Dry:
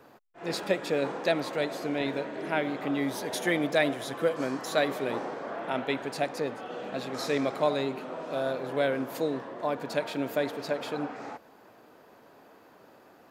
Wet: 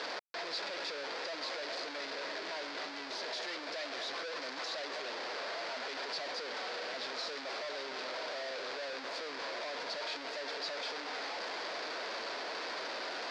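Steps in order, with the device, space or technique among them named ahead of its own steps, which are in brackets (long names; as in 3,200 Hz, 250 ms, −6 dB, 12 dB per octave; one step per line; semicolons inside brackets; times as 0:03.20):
home computer beeper (sign of each sample alone; loudspeaker in its box 610–4,900 Hz, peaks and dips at 820 Hz −5 dB, 1,200 Hz −4 dB, 2,900 Hz −4 dB, 4,700 Hz +7 dB)
level −4.5 dB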